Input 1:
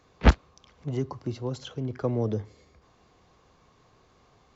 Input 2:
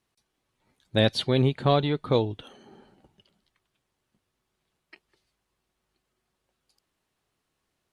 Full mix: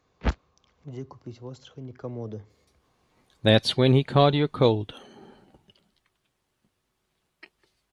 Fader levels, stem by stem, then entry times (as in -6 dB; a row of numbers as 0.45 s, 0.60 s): -8.0 dB, +3.0 dB; 0.00 s, 2.50 s